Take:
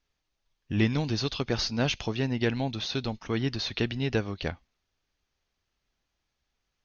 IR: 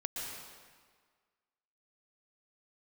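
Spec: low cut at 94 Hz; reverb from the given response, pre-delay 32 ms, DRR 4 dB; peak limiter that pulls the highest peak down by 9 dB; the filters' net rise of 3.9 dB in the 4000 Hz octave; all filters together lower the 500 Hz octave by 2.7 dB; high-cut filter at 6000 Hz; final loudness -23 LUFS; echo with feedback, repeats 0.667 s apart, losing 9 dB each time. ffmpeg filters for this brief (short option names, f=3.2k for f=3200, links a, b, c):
-filter_complex "[0:a]highpass=94,lowpass=6k,equalizer=f=500:t=o:g=-3.5,equalizer=f=4k:t=o:g=5.5,alimiter=limit=-21dB:level=0:latency=1,aecho=1:1:667|1334|2001|2668:0.355|0.124|0.0435|0.0152,asplit=2[a][b];[1:a]atrim=start_sample=2205,adelay=32[c];[b][c]afir=irnorm=-1:irlink=0,volume=-6dB[d];[a][d]amix=inputs=2:normalize=0,volume=7.5dB"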